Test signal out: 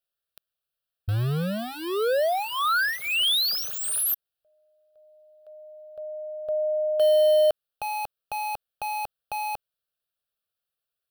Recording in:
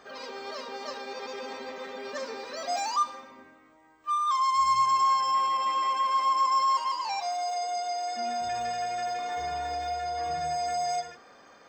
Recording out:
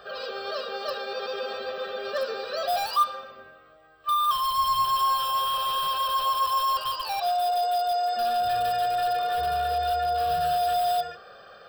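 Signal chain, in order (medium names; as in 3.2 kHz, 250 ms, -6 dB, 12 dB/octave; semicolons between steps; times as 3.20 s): in parallel at -9.5 dB: integer overflow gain 26 dB; on the sum: static phaser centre 1.4 kHz, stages 8; trim +6 dB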